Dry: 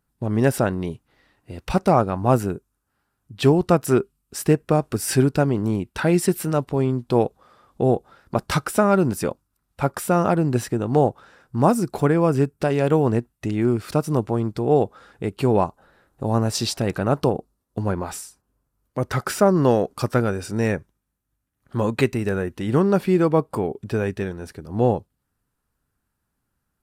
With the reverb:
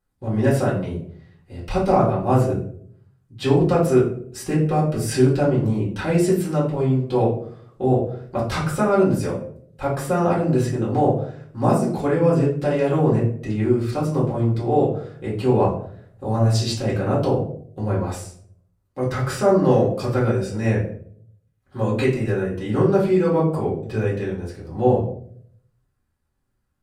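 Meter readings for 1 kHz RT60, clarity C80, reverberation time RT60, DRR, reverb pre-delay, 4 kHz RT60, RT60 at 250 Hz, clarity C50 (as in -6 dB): 0.50 s, 10.5 dB, 0.60 s, -7.5 dB, 4 ms, 0.35 s, 0.80 s, 5.5 dB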